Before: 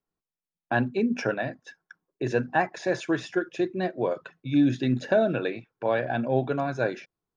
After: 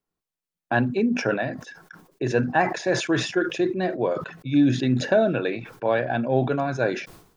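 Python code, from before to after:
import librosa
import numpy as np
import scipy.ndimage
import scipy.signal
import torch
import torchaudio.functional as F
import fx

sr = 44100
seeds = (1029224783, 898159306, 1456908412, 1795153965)

y = fx.sustainer(x, sr, db_per_s=89.0)
y = F.gain(torch.from_numpy(y), 2.5).numpy()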